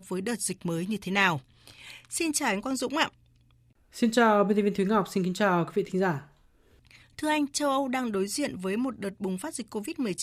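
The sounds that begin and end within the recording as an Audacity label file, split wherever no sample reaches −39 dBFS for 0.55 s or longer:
3.960000	6.220000	sound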